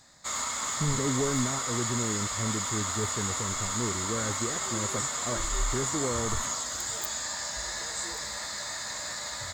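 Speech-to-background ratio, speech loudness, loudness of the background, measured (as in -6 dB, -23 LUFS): -3.5 dB, -34.0 LUFS, -30.5 LUFS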